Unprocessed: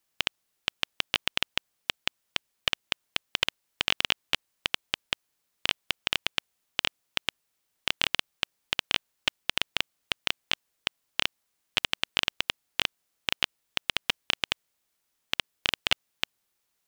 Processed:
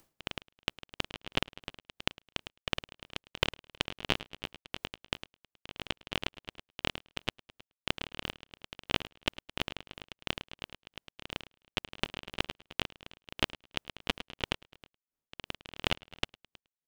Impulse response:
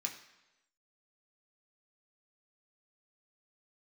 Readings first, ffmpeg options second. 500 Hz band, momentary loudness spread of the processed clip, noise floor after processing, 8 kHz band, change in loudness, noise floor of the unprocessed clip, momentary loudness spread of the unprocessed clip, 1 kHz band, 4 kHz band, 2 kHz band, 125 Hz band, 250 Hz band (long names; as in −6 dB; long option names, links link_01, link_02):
+1.5 dB, 14 LU, below −85 dBFS, −9.0 dB, −7.0 dB, −78 dBFS, 8 LU, −3.0 dB, −8.5 dB, −7.5 dB, +5.0 dB, +4.0 dB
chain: -filter_complex "[0:a]agate=range=-33dB:threshold=-44dB:ratio=3:detection=peak,tiltshelf=frequency=920:gain=8,acompressor=mode=upward:threshold=-36dB:ratio=2.5,asplit=2[link_01][link_02];[link_02]aecho=0:1:106|212|318|424:0.376|0.147|0.0572|0.0223[link_03];[link_01][link_03]amix=inputs=2:normalize=0,aeval=exprs='val(0)*pow(10,-20*(0.5-0.5*cos(2*PI*2.9*n/s))/20)':channel_layout=same,volume=3dB"